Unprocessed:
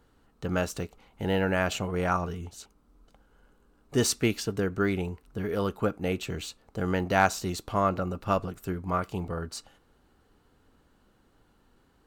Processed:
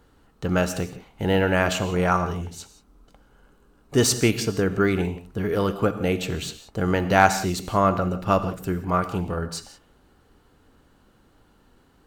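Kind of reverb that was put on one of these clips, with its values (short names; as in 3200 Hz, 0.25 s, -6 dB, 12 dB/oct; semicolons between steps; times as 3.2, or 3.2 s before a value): non-linear reverb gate 0.2 s flat, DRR 10.5 dB; gain +5.5 dB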